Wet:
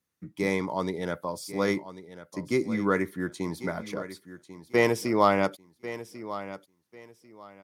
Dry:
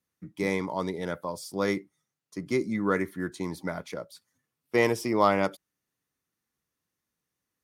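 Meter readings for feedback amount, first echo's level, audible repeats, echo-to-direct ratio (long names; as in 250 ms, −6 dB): 23%, −14.0 dB, 2, −13.5 dB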